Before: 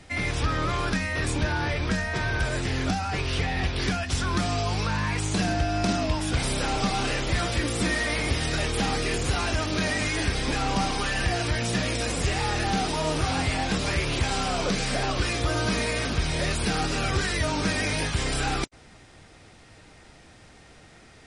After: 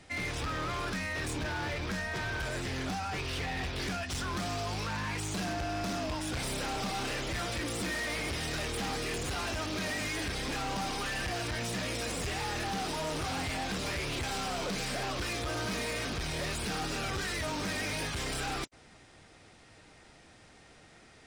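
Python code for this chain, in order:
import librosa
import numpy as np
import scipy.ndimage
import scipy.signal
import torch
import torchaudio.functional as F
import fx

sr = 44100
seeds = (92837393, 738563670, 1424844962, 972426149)

y = fx.low_shelf(x, sr, hz=130.0, db=-5.5)
y = np.clip(y, -10.0 ** (-27.0 / 20.0), 10.0 ** (-27.0 / 20.0))
y = y * 10.0 ** (-4.5 / 20.0)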